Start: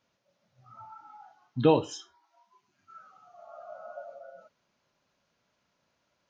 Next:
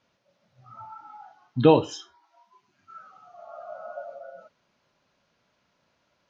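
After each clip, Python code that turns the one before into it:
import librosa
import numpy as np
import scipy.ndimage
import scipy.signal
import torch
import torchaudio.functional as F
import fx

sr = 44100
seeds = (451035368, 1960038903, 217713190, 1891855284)

y = scipy.signal.sosfilt(scipy.signal.butter(2, 5900.0, 'lowpass', fs=sr, output='sos'), x)
y = y * librosa.db_to_amplitude(5.0)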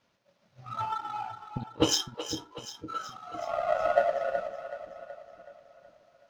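y = fx.over_compress(x, sr, threshold_db=-32.0, ratio=-0.5)
y = fx.power_curve(y, sr, exponent=1.4)
y = fx.echo_split(y, sr, split_hz=410.0, low_ms=508, high_ms=374, feedback_pct=52, wet_db=-10)
y = y * librosa.db_to_amplitude(8.5)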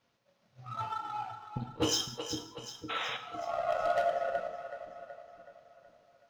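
y = fx.spec_paint(x, sr, seeds[0], shape='noise', start_s=2.89, length_s=0.28, low_hz=430.0, high_hz=3900.0, level_db=-34.0)
y = np.clip(y, -10.0 ** (-19.5 / 20.0), 10.0 ** (-19.5 / 20.0))
y = fx.rev_gated(y, sr, seeds[1], gate_ms=230, shape='falling', drr_db=6.5)
y = y * librosa.db_to_amplitude(-3.5)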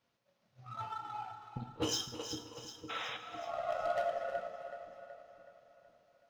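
y = fx.echo_feedback(x, sr, ms=320, feedback_pct=43, wet_db=-13.5)
y = y * librosa.db_to_amplitude(-5.0)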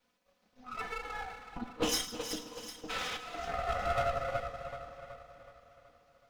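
y = fx.lower_of_two(x, sr, delay_ms=4.0)
y = y * librosa.db_to_amplitude(5.0)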